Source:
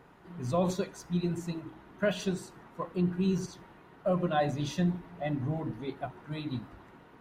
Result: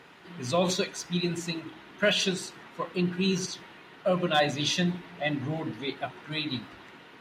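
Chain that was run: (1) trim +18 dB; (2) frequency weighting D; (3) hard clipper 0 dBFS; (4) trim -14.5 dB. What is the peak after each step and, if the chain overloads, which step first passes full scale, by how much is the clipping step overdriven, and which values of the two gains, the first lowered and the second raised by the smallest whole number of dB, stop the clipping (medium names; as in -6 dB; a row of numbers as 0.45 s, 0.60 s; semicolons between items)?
+1.0 dBFS, +3.0 dBFS, 0.0 dBFS, -14.5 dBFS; step 1, 3.0 dB; step 1 +15 dB, step 4 -11.5 dB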